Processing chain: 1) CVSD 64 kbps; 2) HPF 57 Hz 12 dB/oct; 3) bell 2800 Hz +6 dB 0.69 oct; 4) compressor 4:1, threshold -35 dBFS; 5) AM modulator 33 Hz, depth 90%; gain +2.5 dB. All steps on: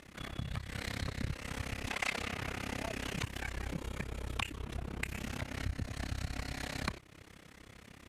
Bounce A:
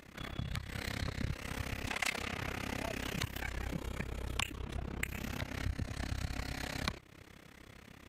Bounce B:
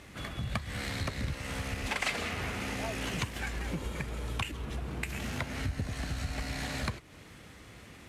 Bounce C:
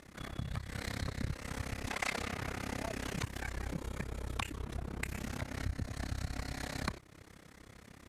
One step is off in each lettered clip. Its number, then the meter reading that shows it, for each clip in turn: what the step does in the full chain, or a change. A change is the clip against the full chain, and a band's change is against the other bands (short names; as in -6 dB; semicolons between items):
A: 1, crest factor change +2.5 dB; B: 5, crest factor change -3.5 dB; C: 3, 4 kHz band -3.0 dB